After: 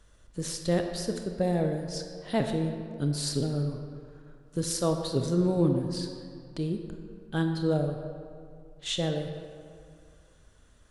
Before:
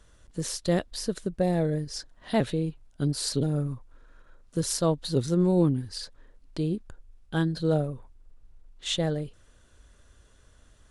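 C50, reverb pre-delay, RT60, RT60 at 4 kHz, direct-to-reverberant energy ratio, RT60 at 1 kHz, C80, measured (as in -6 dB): 5.5 dB, 25 ms, 2.3 s, 1.3 s, 4.5 dB, 2.3 s, 7.0 dB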